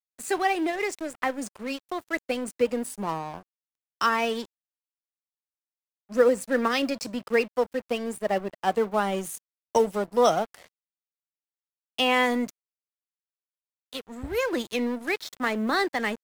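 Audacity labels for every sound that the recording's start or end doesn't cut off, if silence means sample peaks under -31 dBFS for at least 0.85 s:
6.120000	10.550000	sound
11.980000	12.490000	sound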